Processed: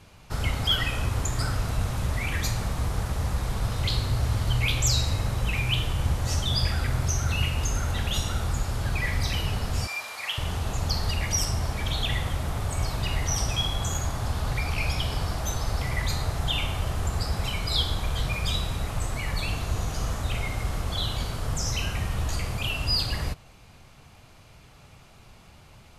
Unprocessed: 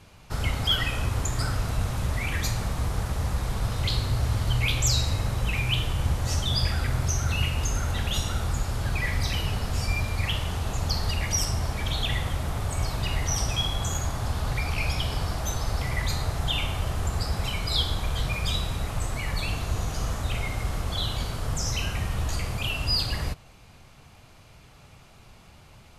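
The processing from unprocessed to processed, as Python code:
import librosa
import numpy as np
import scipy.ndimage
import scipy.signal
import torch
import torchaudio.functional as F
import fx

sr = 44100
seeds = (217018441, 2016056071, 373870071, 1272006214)

y = fx.highpass(x, sr, hz=780.0, slope=12, at=(9.87, 10.38))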